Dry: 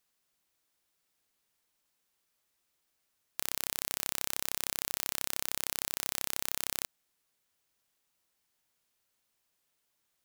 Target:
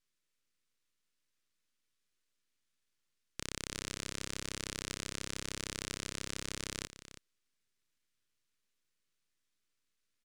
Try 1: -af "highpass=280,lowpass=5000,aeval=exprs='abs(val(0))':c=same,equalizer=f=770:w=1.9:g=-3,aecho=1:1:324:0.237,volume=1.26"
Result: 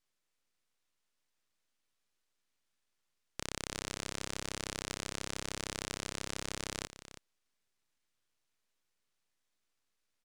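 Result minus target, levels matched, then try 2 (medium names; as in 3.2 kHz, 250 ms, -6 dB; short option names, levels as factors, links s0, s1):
1 kHz band +4.0 dB
-af "highpass=280,lowpass=5000,aeval=exprs='abs(val(0))':c=same,equalizer=f=770:w=1.9:g=-14,aecho=1:1:324:0.237,volume=1.26"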